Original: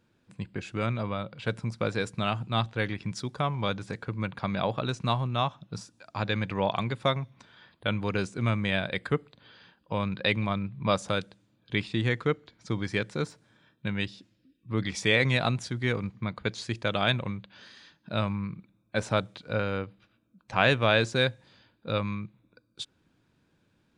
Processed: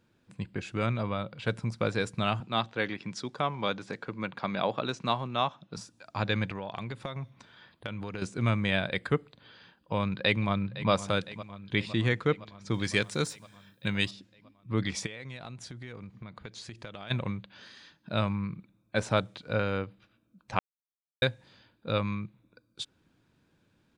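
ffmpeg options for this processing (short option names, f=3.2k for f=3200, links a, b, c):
-filter_complex "[0:a]asettb=1/sr,asplit=3[a][b][c];[a]atrim=end=2.404[d];[b]atrim=start=2.4:end=5.77,asetpts=PTS-STARTPTS,afade=t=in:d=0.004:c=qsin,afade=t=out:st=3.366:d=0.004:c=qsin,highpass=200,lowpass=7.3k[e];[c]atrim=start=5.766[f];[d][e]acrossfade=d=0.004:c1=hsin:c2=qsin[g];[g][f]acrossfade=d=0.004:c1=qsin:c2=hsin,asettb=1/sr,asplit=3[h][i][j];[h]atrim=end=6.494[k];[i]atrim=start=6.49:end=8.22,asetpts=PTS-STARTPTS,afade=t=in:d=0.004:c=qsin,afade=t=out:st=1.726:d=0.004:c=qsin,acompressor=threshold=-32dB:ratio=10:attack=3.2:release=140:knee=1:detection=peak[l];[j]atrim=start=8.216[m];[k][l]acrossfade=d=0.004:c1=hsin:c2=qsin[n];[n][m]acrossfade=d=0.004:c1=qsin:c2=hsin,asplit=2[o][p];[p]afade=t=in:st=9.96:d=0.01,afade=t=out:st=10.91:d=0.01,aecho=0:1:510|1020|1530|2040|2550|3060|3570|4080:0.16788|0.117516|0.0822614|0.057583|0.0403081|0.0282157|0.019751|0.0138257[q];[o][q]amix=inputs=2:normalize=0,asettb=1/sr,asplit=3[r][s][t];[r]atrim=end=12.744[u];[s]atrim=start=12.74:end=14.11,asetpts=PTS-STARTPTS,afade=t=in:d=0.004:c=qsin,afade=t=out:st=1.366:d=0.004:c=qsin,aemphasis=mode=production:type=75kf[v];[t]atrim=start=14.106[w];[u][v]acrossfade=d=0.004:c1=hsin:c2=qsin[x];[x][w]acrossfade=d=0.004:c1=qsin:c2=hsin,asplit=3[y][z][aa];[y]afade=t=out:st=15.05:d=0.02[ab];[z]acompressor=threshold=-40dB:ratio=6:attack=3.2:release=140:knee=1:detection=peak,afade=t=in:st=15.05:d=0.02,afade=t=out:st=17.1:d=0.02[ac];[aa]afade=t=in:st=17.1:d=0.02[ad];[ab][ac][ad]amix=inputs=3:normalize=0,asplit=3[ae][af][ag];[ae]atrim=end=20.59,asetpts=PTS-STARTPTS,afade=t=out:st=20.586:d=0.004:c=hsin[ah];[af]atrim=start=20.59:end=21.22,asetpts=PTS-STARTPTS,volume=0[ai];[ag]atrim=start=21.22,asetpts=PTS-STARTPTS,afade=t=in:d=0.004:c=hsin[aj];[ah][ai][aj]concat=n=3:v=0:a=1"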